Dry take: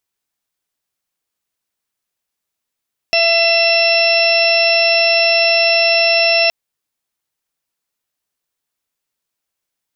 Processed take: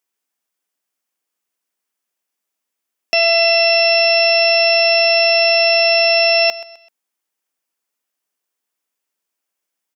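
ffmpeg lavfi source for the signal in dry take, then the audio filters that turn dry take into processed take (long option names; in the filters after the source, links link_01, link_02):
-f lavfi -i "aevalsrc='0.178*sin(2*PI*671*t)+0.0188*sin(2*PI*1342*t)+0.0531*sin(2*PI*2013*t)+0.2*sin(2*PI*2684*t)+0.0299*sin(2*PI*3355*t)+0.0631*sin(2*PI*4026*t)+0.0178*sin(2*PI*4697*t)+0.158*sin(2*PI*5368*t)':duration=3.37:sample_rate=44100"
-af "highpass=frequency=200:width=0.5412,highpass=frequency=200:width=1.3066,equalizer=frequency=4000:width=3.8:gain=-5,aecho=1:1:128|256|384:0.141|0.0494|0.0173"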